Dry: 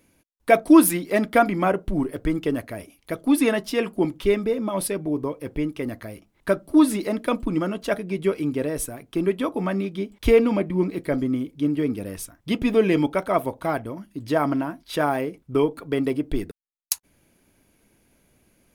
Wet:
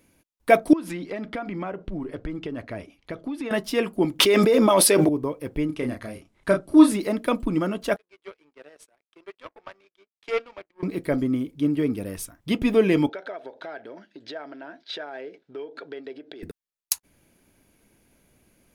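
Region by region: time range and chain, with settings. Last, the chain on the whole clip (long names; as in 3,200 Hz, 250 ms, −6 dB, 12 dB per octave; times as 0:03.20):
0:00.73–0:03.51: low-pass filter 4,600 Hz + downward compressor 12 to 1, threshold −27 dBFS
0:04.19–0:05.09: high-pass filter 320 Hz + dynamic equaliser 5,500 Hz, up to +5 dB, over −47 dBFS, Q 0.93 + envelope flattener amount 100%
0:05.66–0:06.92: low-pass filter 11,000 Hz 24 dB per octave + double-tracking delay 32 ms −4.5 dB
0:07.96–0:10.83: Bessel high-pass filter 620 Hz, order 4 + power curve on the samples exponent 2 + high-frequency loss of the air 86 metres
0:13.09–0:16.43: downward compressor 8 to 1, threshold −33 dBFS + loudspeaker in its box 400–5,500 Hz, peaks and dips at 410 Hz +6 dB, 630 Hz +4 dB, 1,100 Hz −10 dB, 1,600 Hz +9 dB, 3,800 Hz +7 dB
whole clip: no processing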